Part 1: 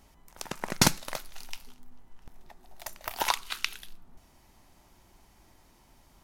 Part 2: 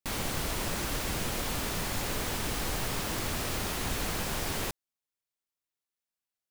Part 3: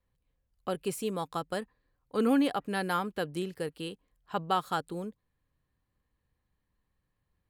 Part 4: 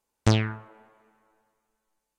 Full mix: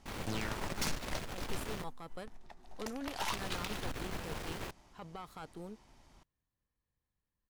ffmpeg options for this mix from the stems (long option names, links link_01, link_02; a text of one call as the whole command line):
ffmpeg -i stem1.wav -i stem2.wav -i stem3.wav -i stem4.wav -filter_complex "[0:a]lowpass=7400,volume=1dB[link_01];[1:a]highshelf=frequency=4800:gain=-11,volume=-4dB,asplit=3[link_02][link_03][link_04];[link_02]atrim=end=1.84,asetpts=PTS-STARTPTS,afade=type=out:start_time=1.836:duration=0.004:curve=hsin[link_05];[link_03]atrim=start=1.84:end=3.32,asetpts=PTS-STARTPTS,volume=0[link_06];[link_04]atrim=start=3.32,asetpts=PTS-STARTPTS,afade=type=in:duration=0.004:curve=hsin[link_07];[link_05][link_06][link_07]concat=n=3:v=0:a=1[link_08];[2:a]alimiter=level_in=1.5dB:limit=-24dB:level=0:latency=1:release=38,volume=-1.5dB,adelay=650,volume=-7dB[link_09];[3:a]highpass=260,dynaudnorm=framelen=280:gausssize=3:maxgain=16dB,volume=-4dB[link_10];[link_01][link_08][link_09][link_10]amix=inputs=4:normalize=0,aeval=exprs='(tanh(39.8*val(0)+0.6)-tanh(0.6))/39.8':channel_layout=same" out.wav